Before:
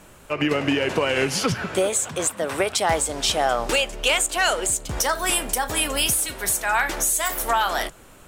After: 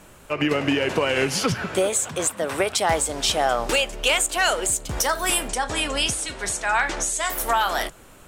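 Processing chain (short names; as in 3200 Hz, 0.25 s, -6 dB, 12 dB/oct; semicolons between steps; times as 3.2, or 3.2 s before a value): 5.48–7.3 LPF 8300 Hz 24 dB/oct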